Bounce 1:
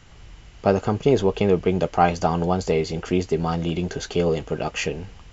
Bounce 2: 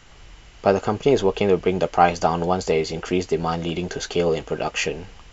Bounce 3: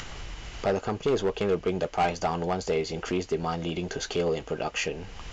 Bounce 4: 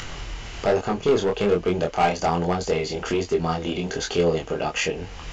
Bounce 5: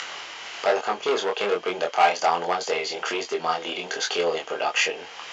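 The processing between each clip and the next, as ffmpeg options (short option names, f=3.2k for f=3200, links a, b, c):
-af "equalizer=f=100:w=0.43:g=-7.5,volume=3dB"
-af "acompressor=mode=upward:threshold=-20dB:ratio=2.5,aresample=16000,asoftclip=type=hard:threshold=-13dB,aresample=44100,volume=-6dB"
-af "flanger=delay=22.5:depth=5:speed=1.2,volume=8dB"
-af "highpass=670,lowpass=6.5k,aeval=exprs='val(0)+0.00178*sin(2*PI*3200*n/s)':c=same,volume=4dB"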